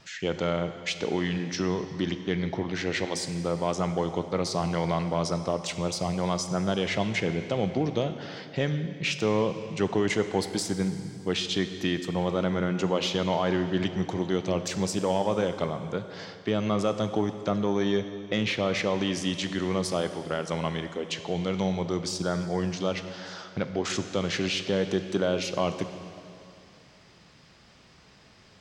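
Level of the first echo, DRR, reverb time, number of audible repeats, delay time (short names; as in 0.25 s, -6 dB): none, 9.0 dB, 2.6 s, none, none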